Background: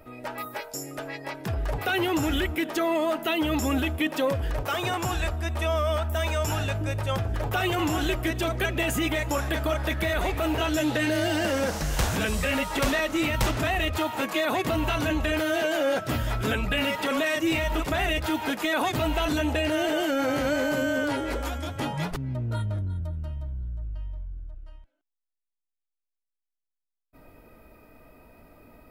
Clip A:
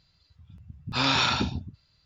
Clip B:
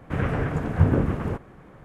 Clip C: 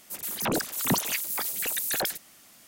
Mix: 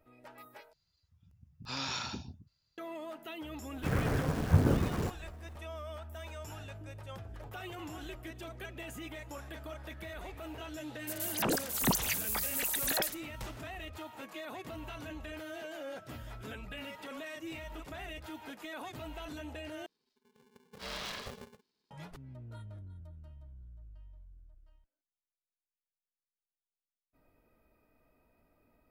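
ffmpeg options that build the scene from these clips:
-filter_complex "[1:a]asplit=2[s0][s1];[0:a]volume=0.126[s2];[s0]aexciter=amount=2.9:drive=4:freq=5200[s3];[2:a]acrusher=bits=7:dc=4:mix=0:aa=0.000001[s4];[3:a]agate=range=0.0224:threshold=0.00398:ratio=3:release=100:detection=peak[s5];[s1]aeval=exprs='val(0)*sgn(sin(2*PI*320*n/s))':c=same[s6];[s2]asplit=3[s7][s8][s9];[s7]atrim=end=0.734[s10];[s3]atrim=end=2.05,asetpts=PTS-STARTPTS,volume=0.188[s11];[s8]atrim=start=2.776:end=19.864[s12];[s6]atrim=end=2.05,asetpts=PTS-STARTPTS,volume=0.133[s13];[s9]atrim=start=21.906[s14];[s4]atrim=end=1.84,asetpts=PTS-STARTPTS,volume=0.501,afade=t=in:d=0.004:c=hsin,afade=t=out:st=1.836:d=0.004:c=hsin,adelay=164493S[s15];[s5]atrim=end=2.67,asetpts=PTS-STARTPTS,volume=0.631,afade=t=in:d=0.004:c=hsin,afade=t=out:st=2.666:d=0.004:c=hsin,adelay=10970[s16];[s10][s11]acrossfade=d=0.004:c1=hsin:c2=hsin[s17];[s17][s12]acrossfade=d=0.004:c1=hsin:c2=hsin[s18];[s18][s13]acrossfade=d=0.004:c1=hsin:c2=hsin[s19];[s19][s14]acrossfade=d=0.004:c1=hsin:c2=hsin[s20];[s20][s15][s16]amix=inputs=3:normalize=0"

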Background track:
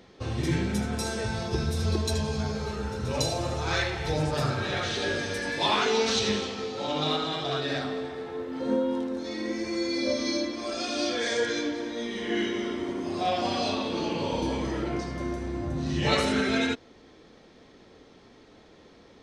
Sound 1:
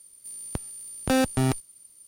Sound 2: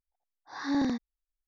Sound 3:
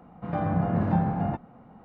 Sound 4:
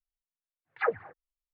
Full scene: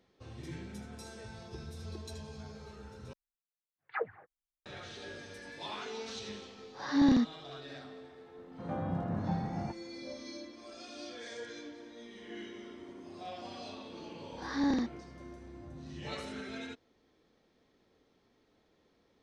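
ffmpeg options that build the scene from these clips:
-filter_complex "[2:a]asplit=2[s0][s1];[0:a]volume=0.141[s2];[s0]bass=f=250:g=10,treble=f=4000:g=1[s3];[s2]asplit=2[s4][s5];[s4]atrim=end=3.134[s6];[4:a]atrim=end=1.53,asetpts=PTS-STARTPTS,volume=0.422[s7];[s5]atrim=start=4.656[s8];[s3]atrim=end=1.47,asetpts=PTS-STARTPTS,volume=0.891,afade=t=in:d=0.004:c=hsin,afade=t=out:st=1.466:d=0.004:c=hsin,adelay=6270[s9];[3:a]atrim=end=1.84,asetpts=PTS-STARTPTS,volume=0.316,afade=t=in:d=0.004:c=hsin,afade=t=out:st=1.836:d=0.004:c=hsin,adelay=8360[s10];[s1]atrim=end=1.47,asetpts=PTS-STARTPTS,volume=0.794,afade=t=in:d=0.004:c=hsin,afade=t=out:st=1.466:d=0.004:c=hsin,adelay=13890[s11];[s6][s7]acrossfade=d=0.004:c1=hsin:c2=hsin[s12];[s12][s8]acrossfade=d=0.004:c1=hsin:c2=hsin[s13];[s13][s9][s10][s11]amix=inputs=4:normalize=0"

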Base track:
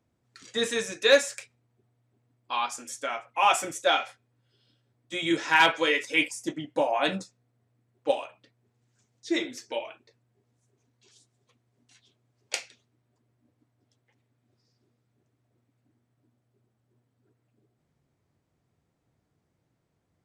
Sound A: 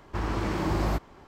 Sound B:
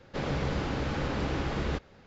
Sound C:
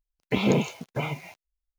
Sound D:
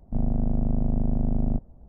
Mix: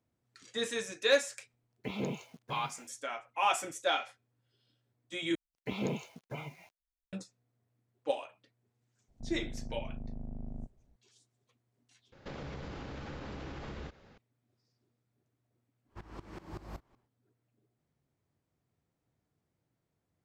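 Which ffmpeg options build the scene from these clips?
-filter_complex "[3:a]asplit=2[s0][s1];[0:a]volume=0.447[s2];[2:a]acompressor=threshold=0.0158:ratio=6:attack=3.2:release=140:knee=1:detection=peak[s3];[1:a]aeval=exprs='val(0)*pow(10,-18*if(lt(mod(-5.3*n/s,1),2*abs(-5.3)/1000),1-mod(-5.3*n/s,1)/(2*abs(-5.3)/1000),(mod(-5.3*n/s,1)-2*abs(-5.3)/1000)/(1-2*abs(-5.3)/1000))/20)':c=same[s4];[s2]asplit=3[s5][s6][s7];[s5]atrim=end=5.354[s8];[s1]atrim=end=1.78,asetpts=PTS-STARTPTS,volume=0.237[s9];[s6]atrim=start=7.126:end=12.124[s10];[s3]atrim=end=2.06,asetpts=PTS-STARTPTS,volume=0.668[s11];[s7]atrim=start=14.176[s12];[s0]atrim=end=1.78,asetpts=PTS-STARTPTS,volume=0.2,afade=t=in:d=0.004:c=hsin,afade=t=out:st=1.776:d=0.004:c=hsin,adelay=1530[s13];[4:a]atrim=end=1.88,asetpts=PTS-STARTPTS,volume=0.126,afade=t=in:d=0.004:c=hsin,afade=t=out:st=1.876:d=0.004:c=hsin,adelay=9080[s14];[s4]atrim=end=1.27,asetpts=PTS-STARTPTS,volume=0.211,afade=t=in:d=0.1,afade=t=out:st=1.17:d=0.1,adelay=15820[s15];[s8][s9]acrossfade=d=0.004:c1=hsin:c2=hsin[s16];[s16][s10]acrossfade=d=0.004:c1=hsin:c2=hsin[s17];[s17][s11]acrossfade=d=0.004:c1=hsin:c2=hsin[s18];[s18][s12]acrossfade=d=0.004:c1=hsin:c2=hsin[s19];[s19][s13][s14][s15]amix=inputs=4:normalize=0"

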